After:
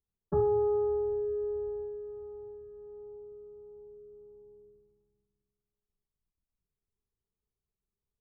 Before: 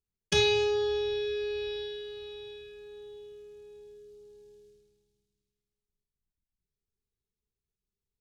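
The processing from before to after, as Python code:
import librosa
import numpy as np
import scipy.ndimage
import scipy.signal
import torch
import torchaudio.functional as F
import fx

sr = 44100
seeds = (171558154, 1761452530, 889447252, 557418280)

y = scipy.signal.sosfilt(scipy.signal.butter(12, 1300.0, 'lowpass', fs=sr, output='sos'), x)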